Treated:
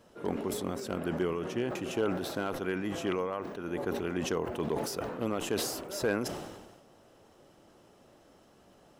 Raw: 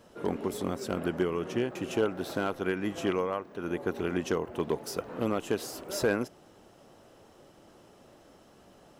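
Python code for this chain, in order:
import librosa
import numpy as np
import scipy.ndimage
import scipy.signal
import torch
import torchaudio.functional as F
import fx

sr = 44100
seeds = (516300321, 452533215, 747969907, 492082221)

y = fx.sustainer(x, sr, db_per_s=44.0)
y = y * 10.0 ** (-3.5 / 20.0)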